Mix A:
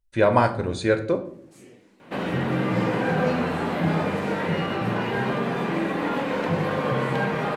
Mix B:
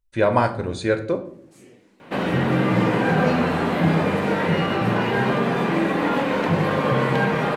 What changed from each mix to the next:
second sound +4.5 dB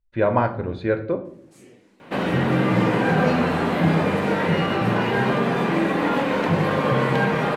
speech: add air absorption 370 m

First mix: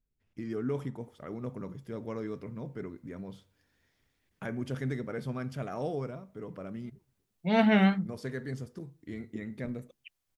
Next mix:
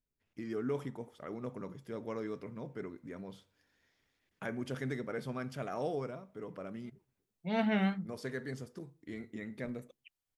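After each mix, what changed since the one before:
first voice: add low shelf 180 Hz -10 dB; second voice -7.5 dB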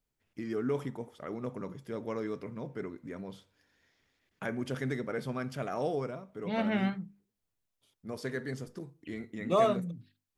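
first voice +3.5 dB; second voice: entry -1.00 s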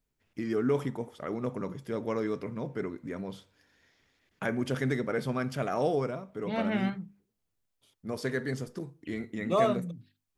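first voice +4.5 dB

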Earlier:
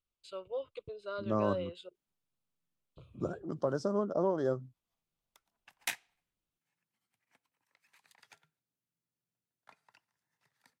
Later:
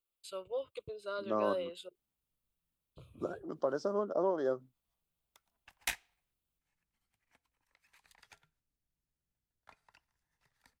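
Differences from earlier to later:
first voice: remove air absorption 89 m; second voice: add BPF 300–5700 Hz; background: remove HPF 120 Hz 24 dB/oct

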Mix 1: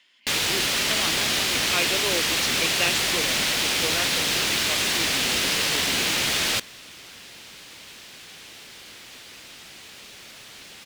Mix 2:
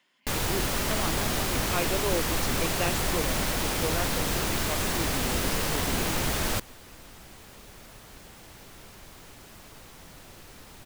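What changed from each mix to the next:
second sound: entry -2.45 s; master: remove weighting filter D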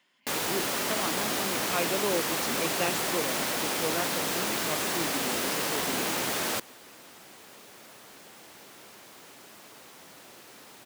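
speech: remove HPF 250 Hz; master: add HPF 250 Hz 12 dB/oct

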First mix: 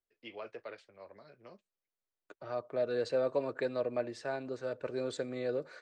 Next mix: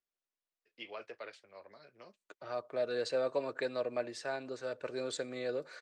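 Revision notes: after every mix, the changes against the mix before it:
first voice: entry +0.55 s; master: add tilt +2 dB/oct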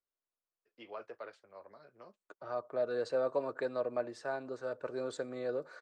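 master: add resonant high shelf 1700 Hz -7.5 dB, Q 1.5

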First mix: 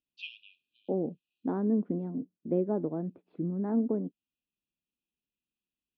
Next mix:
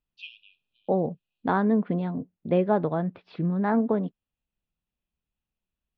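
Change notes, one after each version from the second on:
second voice: remove band-pass 300 Hz, Q 2.3; master: add low shelf 62 Hz -9 dB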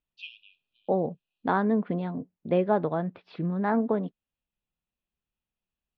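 second voice: add low shelf 230 Hz -5 dB

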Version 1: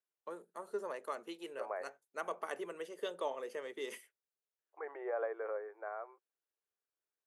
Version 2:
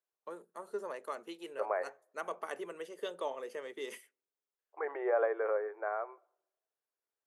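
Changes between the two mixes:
second voice +4.5 dB; reverb: on, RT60 0.75 s

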